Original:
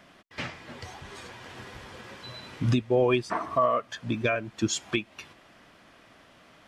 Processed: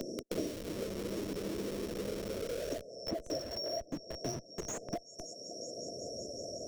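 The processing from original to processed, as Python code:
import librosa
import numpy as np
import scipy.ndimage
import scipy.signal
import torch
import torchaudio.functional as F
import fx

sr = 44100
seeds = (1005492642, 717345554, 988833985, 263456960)

p1 = fx.band_shuffle(x, sr, order='2341')
p2 = p1 + fx.echo_heads(p1, sr, ms=186, heads='second and third', feedback_pct=65, wet_db=-24, dry=0)
p3 = fx.filter_sweep_bandpass(p2, sr, from_hz=340.0, to_hz=1700.0, start_s=1.79, end_s=5.43, q=2.3)
p4 = fx.brickwall_bandstop(p3, sr, low_hz=700.0, high_hz=5300.0)
p5 = fx.schmitt(p4, sr, flips_db=-59.0)
p6 = p4 + (p5 * 10.0 ** (-5.0 / 20.0))
p7 = fx.band_squash(p6, sr, depth_pct=100)
y = p7 * 10.0 ** (16.0 / 20.0)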